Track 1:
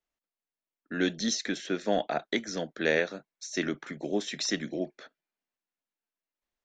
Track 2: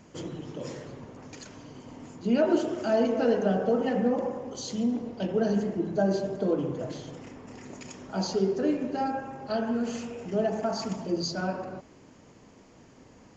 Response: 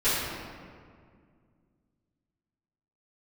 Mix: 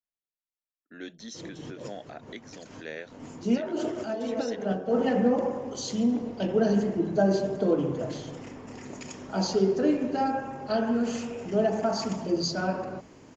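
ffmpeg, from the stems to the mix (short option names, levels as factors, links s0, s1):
-filter_complex "[0:a]volume=0.224,asplit=2[s0][s1];[1:a]adelay=1200,volume=1.33[s2];[s1]apad=whole_len=642147[s3];[s2][s3]sidechaincompress=threshold=0.002:ratio=8:attack=40:release=129[s4];[s0][s4]amix=inputs=2:normalize=0,bandreject=f=60:t=h:w=6,bandreject=f=120:t=h:w=6,bandreject=f=180:t=h:w=6"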